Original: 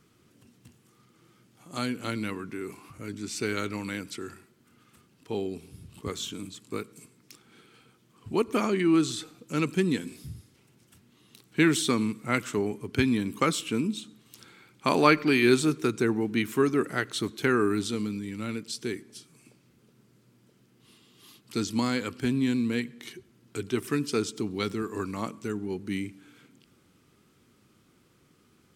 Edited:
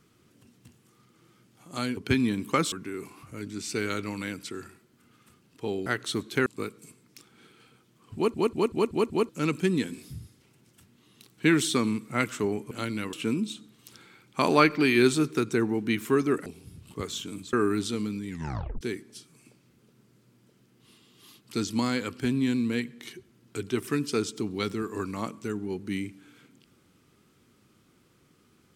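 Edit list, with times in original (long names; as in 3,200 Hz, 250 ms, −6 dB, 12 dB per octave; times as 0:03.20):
0:01.97–0:02.39: swap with 0:12.85–0:13.60
0:05.53–0:06.60: swap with 0:16.93–0:17.53
0:08.29: stutter in place 0.19 s, 6 plays
0:18.29: tape stop 0.52 s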